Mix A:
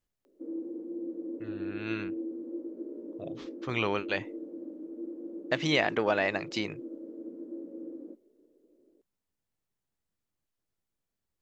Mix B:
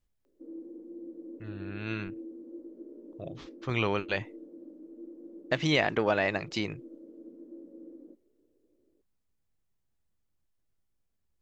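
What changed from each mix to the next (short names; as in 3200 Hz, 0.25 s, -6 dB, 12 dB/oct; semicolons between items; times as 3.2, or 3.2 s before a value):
background -7.5 dB; master: add low shelf 110 Hz +11 dB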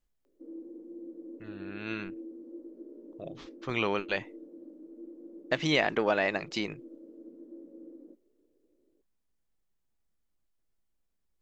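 master: add bell 100 Hz -10.5 dB 0.89 oct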